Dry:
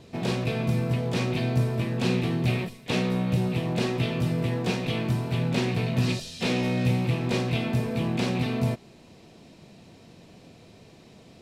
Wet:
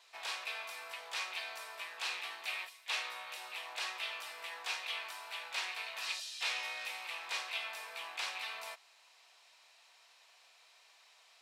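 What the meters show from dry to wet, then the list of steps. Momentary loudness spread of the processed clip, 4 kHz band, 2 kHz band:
6 LU, -4.0 dB, -4.0 dB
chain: HPF 940 Hz 24 dB/oct; gain -4 dB

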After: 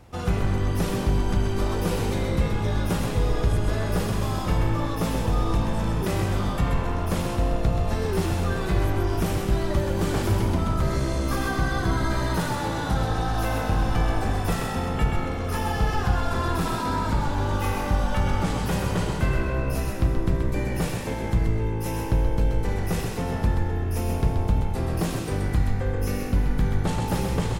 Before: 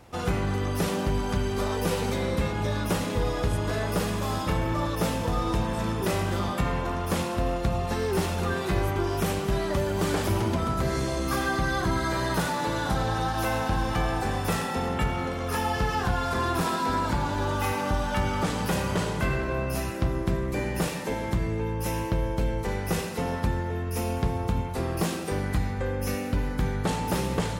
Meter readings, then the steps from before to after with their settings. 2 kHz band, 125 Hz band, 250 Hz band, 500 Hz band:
-1.0 dB, +4.0 dB, +1.5 dB, 0.0 dB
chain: low shelf 150 Hz +8.5 dB; frequency-shifting echo 0.129 s, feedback 30%, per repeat -56 Hz, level -5 dB; gain -2 dB

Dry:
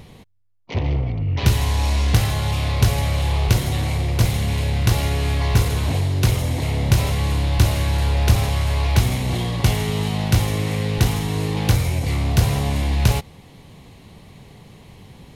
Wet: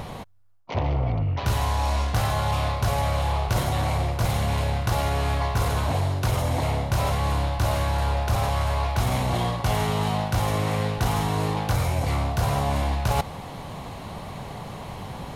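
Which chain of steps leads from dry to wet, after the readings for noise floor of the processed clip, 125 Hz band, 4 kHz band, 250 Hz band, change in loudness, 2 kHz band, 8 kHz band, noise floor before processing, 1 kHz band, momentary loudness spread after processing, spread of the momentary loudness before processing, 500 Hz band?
-37 dBFS, -5.5 dB, -5.5 dB, -5.0 dB, -4.5 dB, -3.5 dB, -6.0 dB, -46 dBFS, +4.0 dB, 12 LU, 4 LU, 0.0 dB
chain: band shelf 930 Hz +9 dB; reverse; compressor 6:1, threshold -28 dBFS, peak gain reduction 18 dB; reverse; gain +6.5 dB

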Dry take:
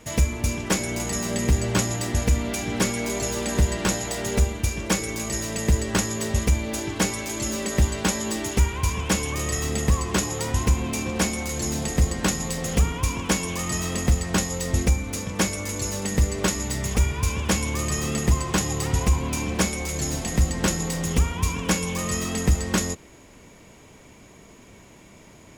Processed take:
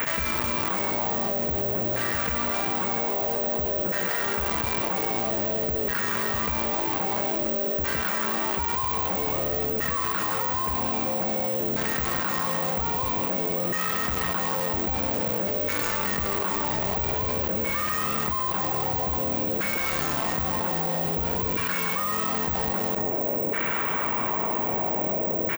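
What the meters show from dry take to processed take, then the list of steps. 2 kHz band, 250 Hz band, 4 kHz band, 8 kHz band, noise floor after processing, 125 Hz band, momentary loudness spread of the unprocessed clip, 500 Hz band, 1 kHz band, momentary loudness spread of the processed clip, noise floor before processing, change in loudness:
0.0 dB, -5.5 dB, -4.5 dB, -12.5 dB, -27 dBFS, -11.0 dB, 4 LU, +1.0 dB, +4.5 dB, 0 LU, -49 dBFS, 0.0 dB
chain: tone controls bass +5 dB, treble -6 dB; LFO band-pass saw down 0.51 Hz 520–1600 Hz; bell 1300 Hz -2.5 dB 2.3 oct; echo 0.164 s -13.5 dB; in parallel at +2 dB: bit-crush 7-bit; on the sum: careless resampling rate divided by 2×, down filtered, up zero stuff; soft clip -19 dBFS, distortion -12 dB; fast leveller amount 100%; gain -2 dB

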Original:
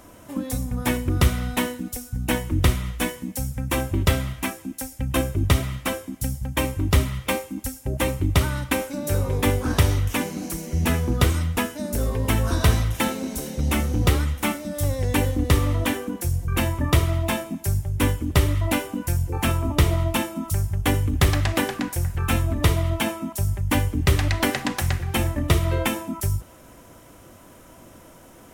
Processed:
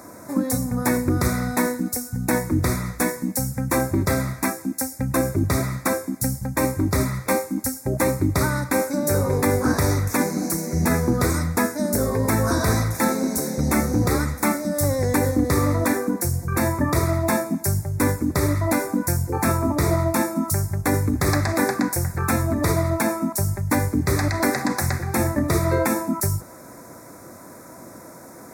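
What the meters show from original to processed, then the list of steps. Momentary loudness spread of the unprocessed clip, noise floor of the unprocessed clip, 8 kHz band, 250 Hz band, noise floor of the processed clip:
8 LU, -48 dBFS, +4.5 dB, +4.5 dB, -42 dBFS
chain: HPF 130 Hz 12 dB/oct; limiter -15.5 dBFS, peak gain reduction 9.5 dB; Butterworth band-stop 3000 Hz, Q 1.5; gain +6.5 dB

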